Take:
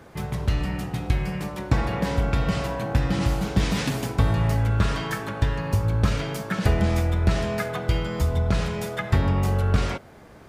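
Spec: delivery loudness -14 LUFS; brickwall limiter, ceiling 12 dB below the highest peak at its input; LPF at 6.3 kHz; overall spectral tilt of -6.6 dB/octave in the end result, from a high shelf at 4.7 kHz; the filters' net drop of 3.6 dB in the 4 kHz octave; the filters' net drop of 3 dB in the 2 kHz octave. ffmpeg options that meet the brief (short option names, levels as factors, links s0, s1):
-af "lowpass=6300,equalizer=f=2000:t=o:g=-3.5,equalizer=f=4000:t=o:g=-6,highshelf=f=4700:g=6.5,volume=5.01,alimiter=limit=0.631:level=0:latency=1"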